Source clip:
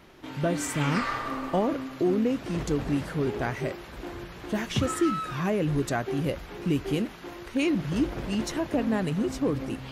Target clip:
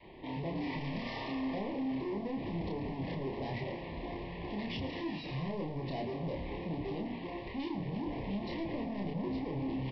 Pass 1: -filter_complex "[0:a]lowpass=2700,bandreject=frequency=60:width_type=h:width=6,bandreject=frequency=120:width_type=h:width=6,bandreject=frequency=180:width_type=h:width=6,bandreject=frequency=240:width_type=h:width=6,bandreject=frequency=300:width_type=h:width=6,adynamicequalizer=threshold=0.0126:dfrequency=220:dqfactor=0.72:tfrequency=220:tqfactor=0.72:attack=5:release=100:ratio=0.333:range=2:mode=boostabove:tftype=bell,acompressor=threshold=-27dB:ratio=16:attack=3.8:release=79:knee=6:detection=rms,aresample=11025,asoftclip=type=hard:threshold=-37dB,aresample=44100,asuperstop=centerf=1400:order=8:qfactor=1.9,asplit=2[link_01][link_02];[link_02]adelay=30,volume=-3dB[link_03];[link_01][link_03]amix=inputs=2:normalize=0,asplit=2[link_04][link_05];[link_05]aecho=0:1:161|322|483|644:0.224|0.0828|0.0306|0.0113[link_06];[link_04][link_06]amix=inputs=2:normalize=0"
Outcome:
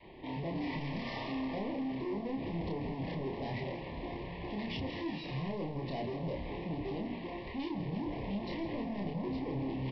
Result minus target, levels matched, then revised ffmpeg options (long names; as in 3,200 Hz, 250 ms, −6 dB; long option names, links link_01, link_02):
echo 51 ms late
-filter_complex "[0:a]lowpass=2700,bandreject=frequency=60:width_type=h:width=6,bandreject=frequency=120:width_type=h:width=6,bandreject=frequency=180:width_type=h:width=6,bandreject=frequency=240:width_type=h:width=6,bandreject=frequency=300:width_type=h:width=6,adynamicequalizer=threshold=0.0126:dfrequency=220:dqfactor=0.72:tfrequency=220:tqfactor=0.72:attack=5:release=100:ratio=0.333:range=2:mode=boostabove:tftype=bell,acompressor=threshold=-27dB:ratio=16:attack=3.8:release=79:knee=6:detection=rms,aresample=11025,asoftclip=type=hard:threshold=-37dB,aresample=44100,asuperstop=centerf=1400:order=8:qfactor=1.9,asplit=2[link_01][link_02];[link_02]adelay=30,volume=-3dB[link_03];[link_01][link_03]amix=inputs=2:normalize=0,asplit=2[link_04][link_05];[link_05]aecho=0:1:110|220|330|440:0.224|0.0828|0.0306|0.0113[link_06];[link_04][link_06]amix=inputs=2:normalize=0"